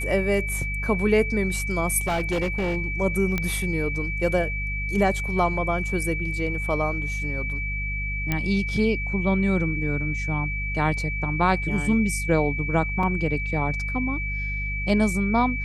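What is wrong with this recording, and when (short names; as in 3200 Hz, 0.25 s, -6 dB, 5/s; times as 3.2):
hum 50 Hz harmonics 4 -30 dBFS
tone 2300 Hz -29 dBFS
2.07–2.77 clipped -20.5 dBFS
3.38 pop -11 dBFS
8.32 pop -10 dBFS
13.03 gap 3.5 ms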